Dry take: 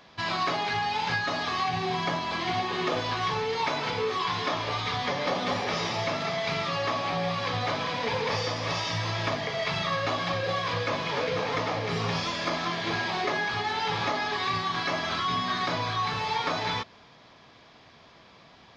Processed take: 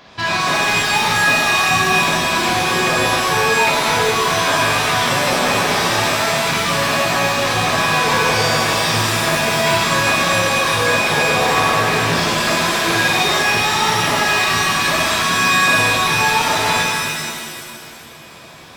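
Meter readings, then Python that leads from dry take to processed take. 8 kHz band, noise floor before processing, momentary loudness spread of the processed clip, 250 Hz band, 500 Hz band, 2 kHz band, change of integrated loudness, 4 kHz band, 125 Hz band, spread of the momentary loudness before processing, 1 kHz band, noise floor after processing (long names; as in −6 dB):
can't be measured, −54 dBFS, 3 LU, +11.5 dB, +11.0 dB, +16.0 dB, +13.5 dB, +13.5 dB, +10.0 dB, 2 LU, +11.5 dB, −38 dBFS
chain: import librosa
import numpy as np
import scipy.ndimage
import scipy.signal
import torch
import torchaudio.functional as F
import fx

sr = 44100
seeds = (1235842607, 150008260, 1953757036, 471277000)

y = np.clip(10.0 ** (26.0 / 20.0) * x, -1.0, 1.0) / 10.0 ** (26.0 / 20.0)
y = fx.rev_shimmer(y, sr, seeds[0], rt60_s=1.9, semitones=7, shimmer_db=-2, drr_db=-0.5)
y = F.gain(torch.from_numpy(y), 8.5).numpy()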